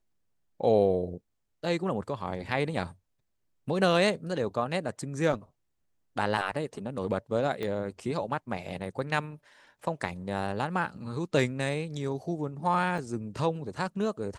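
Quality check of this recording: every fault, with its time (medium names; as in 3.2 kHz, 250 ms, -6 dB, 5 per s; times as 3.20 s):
7.63 s: pop -21 dBFS
12.98 s: dropout 2.8 ms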